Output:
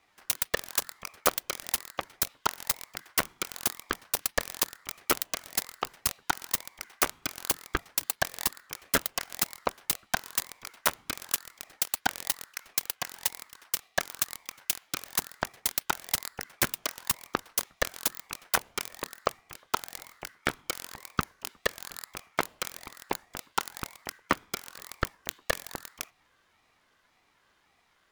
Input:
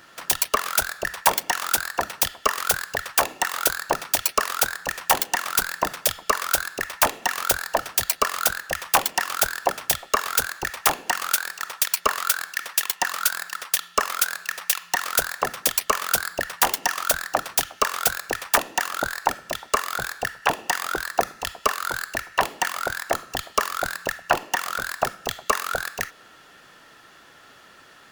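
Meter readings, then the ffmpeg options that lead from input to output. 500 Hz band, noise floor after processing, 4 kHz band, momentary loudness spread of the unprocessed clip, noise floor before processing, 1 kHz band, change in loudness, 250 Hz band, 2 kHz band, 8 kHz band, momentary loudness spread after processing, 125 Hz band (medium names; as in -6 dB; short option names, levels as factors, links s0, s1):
-9.0 dB, -69 dBFS, -7.5 dB, 6 LU, -50 dBFS, -11.5 dB, -8.0 dB, -3.0 dB, -9.5 dB, -7.5 dB, 10 LU, -2.5 dB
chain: -af "aeval=exprs='0.841*(cos(1*acos(clip(val(0)/0.841,-1,1)))-cos(1*PI/2))+0.0133*(cos(3*acos(clip(val(0)/0.841,-1,1)))-cos(3*PI/2))+0.133*(cos(7*acos(clip(val(0)/0.841,-1,1)))-cos(7*PI/2))':c=same,acontrast=82,aeval=exprs='val(0)*sin(2*PI*410*n/s+410*0.55/1.8*sin(2*PI*1.8*n/s))':c=same,volume=0.501"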